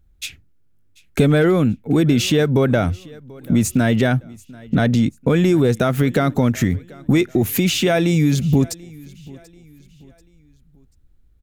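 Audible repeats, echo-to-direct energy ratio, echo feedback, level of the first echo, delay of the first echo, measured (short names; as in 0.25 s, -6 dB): 2, -22.5 dB, 40%, -23.0 dB, 0.737 s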